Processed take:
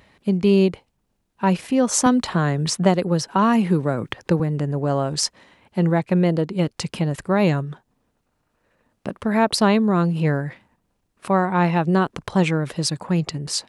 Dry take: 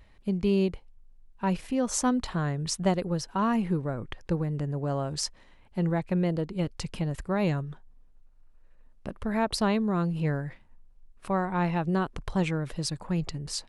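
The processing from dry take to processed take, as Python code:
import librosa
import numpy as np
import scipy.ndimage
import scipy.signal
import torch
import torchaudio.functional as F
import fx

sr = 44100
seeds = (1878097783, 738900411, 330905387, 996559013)

y = scipy.signal.sosfilt(scipy.signal.butter(2, 130.0, 'highpass', fs=sr, output='sos'), x)
y = fx.band_squash(y, sr, depth_pct=40, at=(2.06, 4.4))
y = F.gain(torch.from_numpy(y), 9.0).numpy()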